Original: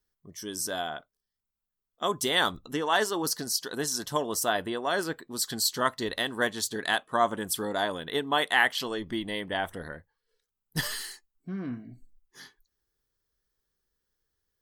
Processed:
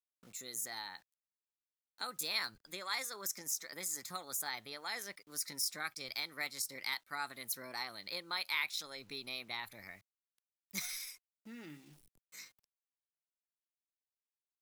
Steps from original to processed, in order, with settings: pitch shift +3.5 st; amplifier tone stack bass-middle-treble 5-5-5; word length cut 12-bit, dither none; three bands compressed up and down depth 40%; trim -1 dB

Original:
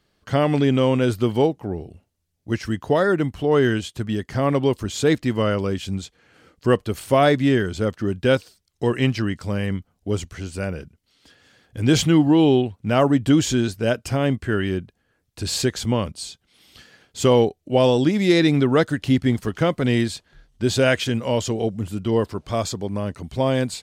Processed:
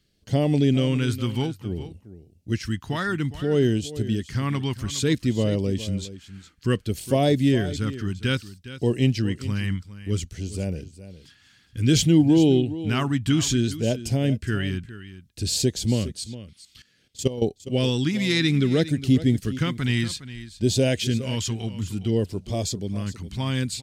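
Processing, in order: phase shifter stages 2, 0.59 Hz, lowest notch 510–1300 Hz; 16.21–17.42 s: level held to a coarse grid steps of 16 dB; delay 411 ms -14.5 dB

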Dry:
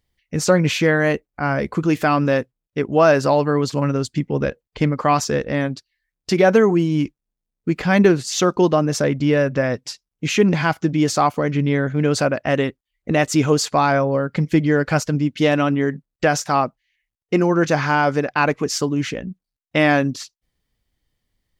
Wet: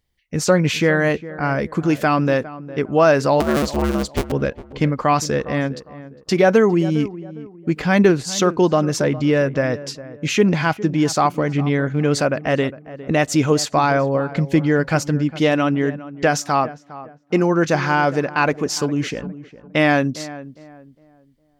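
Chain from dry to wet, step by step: 3.40–4.32 s: cycle switcher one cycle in 2, inverted; on a send: filtered feedback delay 407 ms, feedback 33%, low-pass 1.4 kHz, level -15.5 dB

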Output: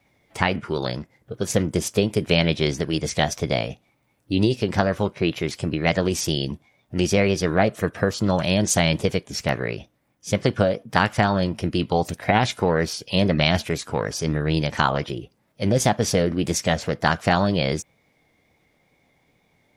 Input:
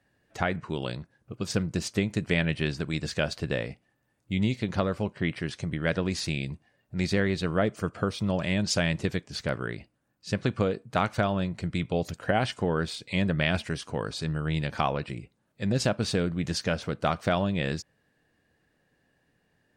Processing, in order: formant shift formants +4 st; wow and flutter 28 cents; trim +6.5 dB

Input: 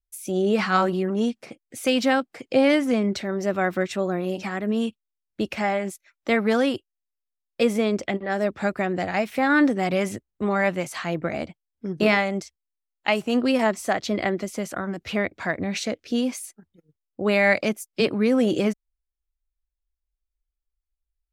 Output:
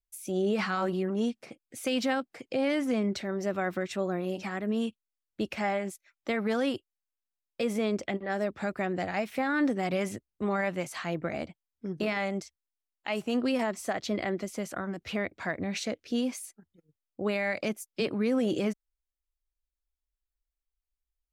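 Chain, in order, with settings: peak limiter -14 dBFS, peak gain reduction 8.5 dB; trim -5.5 dB

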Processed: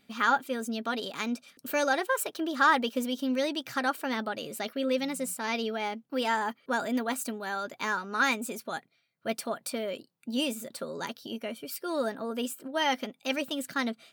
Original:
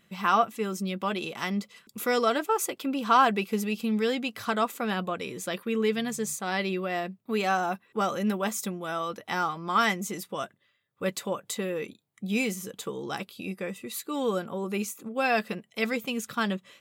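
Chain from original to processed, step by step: tape speed +19%; trim -2 dB

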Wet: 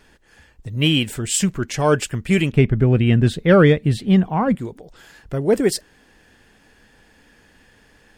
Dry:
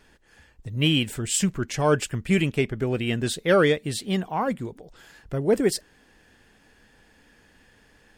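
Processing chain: 2.52–4.55 s: tone controls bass +11 dB, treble -11 dB; trim +4 dB

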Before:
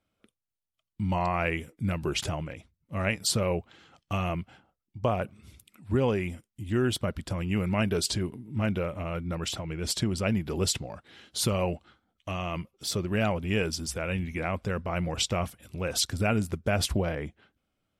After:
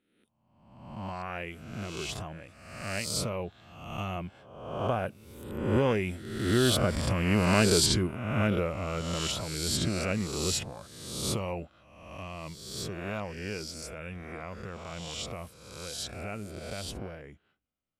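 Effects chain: reverse spectral sustain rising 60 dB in 1.04 s; Doppler pass-by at 7.35 s, 11 m/s, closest 16 m; trim +1.5 dB

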